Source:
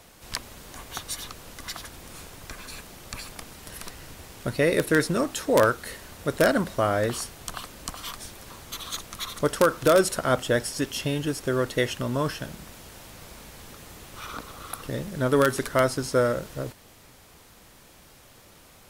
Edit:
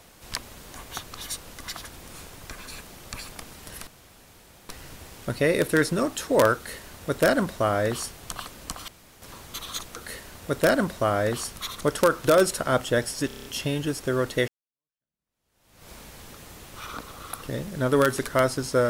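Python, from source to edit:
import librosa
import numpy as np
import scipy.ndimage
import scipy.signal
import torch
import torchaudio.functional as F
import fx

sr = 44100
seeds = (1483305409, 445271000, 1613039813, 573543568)

y = fx.edit(x, sr, fx.reverse_span(start_s=1.04, length_s=0.37),
    fx.insert_room_tone(at_s=3.87, length_s=0.82),
    fx.duplicate(start_s=5.73, length_s=1.6, to_s=9.14),
    fx.room_tone_fill(start_s=8.06, length_s=0.34),
    fx.stutter(start_s=10.85, slice_s=0.03, count=7),
    fx.fade_in_span(start_s=11.88, length_s=1.42, curve='exp'), tone=tone)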